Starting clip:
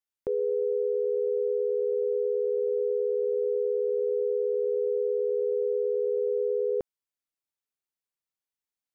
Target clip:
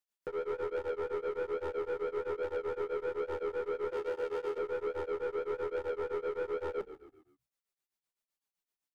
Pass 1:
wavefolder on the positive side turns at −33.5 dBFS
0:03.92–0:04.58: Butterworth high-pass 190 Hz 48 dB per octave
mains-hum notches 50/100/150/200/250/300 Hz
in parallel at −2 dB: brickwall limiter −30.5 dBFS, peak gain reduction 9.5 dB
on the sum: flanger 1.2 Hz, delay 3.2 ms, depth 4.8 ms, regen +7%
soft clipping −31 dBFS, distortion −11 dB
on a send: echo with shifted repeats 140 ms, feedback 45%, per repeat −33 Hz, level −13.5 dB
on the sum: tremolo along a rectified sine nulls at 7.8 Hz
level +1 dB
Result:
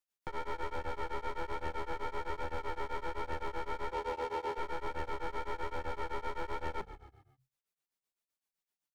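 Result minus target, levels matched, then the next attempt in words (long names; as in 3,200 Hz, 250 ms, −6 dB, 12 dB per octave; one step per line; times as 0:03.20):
wavefolder on the positive side: distortion +15 dB
wavefolder on the positive side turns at −25 dBFS
0:03.92–0:04.58: Butterworth high-pass 190 Hz 48 dB per octave
mains-hum notches 50/100/150/200/250/300 Hz
in parallel at −2 dB: brickwall limiter −30.5 dBFS, peak gain reduction 9 dB
on the sum: flanger 1.2 Hz, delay 3.2 ms, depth 4.8 ms, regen +7%
soft clipping −31 dBFS, distortion −11 dB
on a send: echo with shifted repeats 140 ms, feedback 45%, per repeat −33 Hz, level −13.5 dB
on the sum: tremolo along a rectified sine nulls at 7.8 Hz
level +1 dB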